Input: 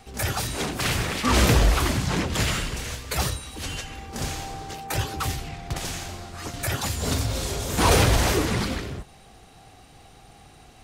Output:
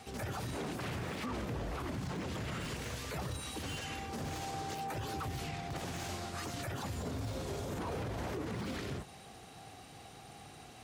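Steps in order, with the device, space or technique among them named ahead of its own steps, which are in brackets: podcast mastering chain (HPF 94 Hz 12 dB/oct; de-esser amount 95%; compressor, threshold -27 dBFS, peak gain reduction 9.5 dB; limiter -29.5 dBFS, peak gain reduction 10.5 dB; gain -1 dB; MP3 112 kbps 44100 Hz)

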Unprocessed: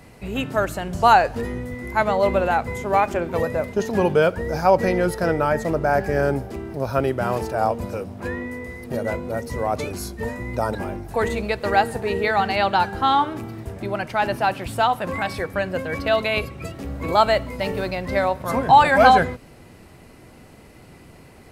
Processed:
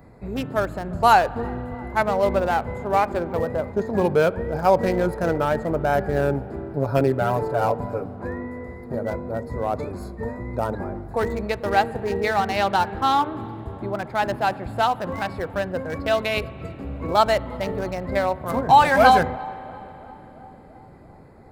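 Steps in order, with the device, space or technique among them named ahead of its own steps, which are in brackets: Wiener smoothing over 15 samples; high shelf 10000 Hz +11.5 dB; 6.74–8.16 comb 7 ms, depth 93%; dub delay into a spring reverb (darkening echo 0.34 s, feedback 74%, low-pass 1600 Hz, level -24 dB; spring tank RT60 3.7 s, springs 35 ms, chirp 80 ms, DRR 19 dB); gain -1 dB

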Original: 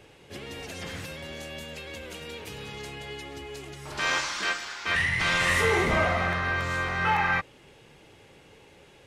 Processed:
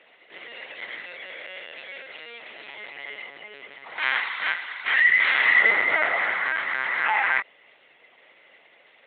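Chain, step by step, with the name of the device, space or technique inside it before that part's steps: talking toy (LPC vocoder at 8 kHz pitch kept; HPF 570 Hz 12 dB/oct; bell 2000 Hz +11.5 dB 0.26 oct)

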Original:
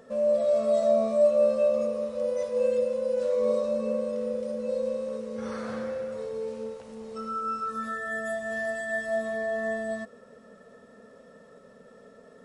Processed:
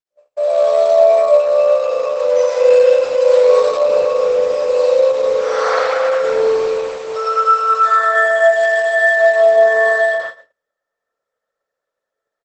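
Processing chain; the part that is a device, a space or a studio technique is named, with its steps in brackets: steep high-pass 490 Hz 48 dB/oct; narrowing echo 0.103 s, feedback 69%, band-pass 2300 Hz, level -3 dB; speakerphone in a meeting room (reverb RT60 0.75 s, pre-delay 77 ms, DRR -6 dB; speakerphone echo 0.14 s, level -20 dB; AGC gain up to 16 dB; gate -24 dBFS, range -48 dB; Opus 12 kbps 48000 Hz)

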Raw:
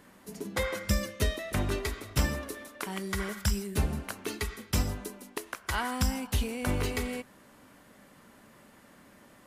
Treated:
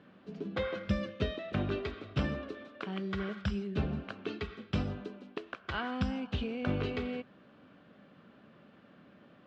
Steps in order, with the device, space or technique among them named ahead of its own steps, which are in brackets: guitar cabinet (speaker cabinet 94–3400 Hz, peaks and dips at 170 Hz +4 dB, 930 Hz -9 dB, 2000 Hz -9 dB); gain -1 dB

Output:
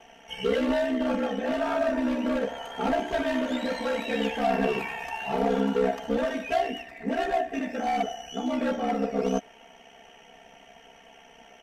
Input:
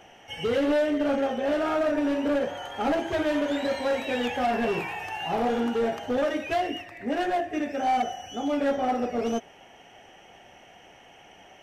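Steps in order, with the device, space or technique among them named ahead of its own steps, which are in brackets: ring-modulated robot voice (ring modulator 33 Hz; comb 4.4 ms, depth 86%)

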